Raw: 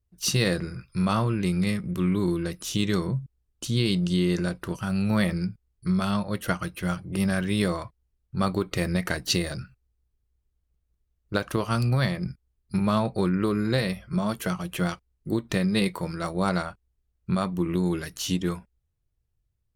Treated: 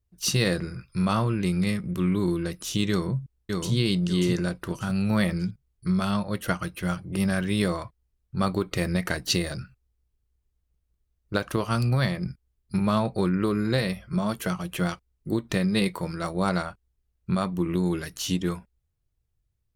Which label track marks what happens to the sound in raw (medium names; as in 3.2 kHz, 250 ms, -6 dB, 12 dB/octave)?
2.900000	3.730000	echo throw 590 ms, feedback 30%, level -3.5 dB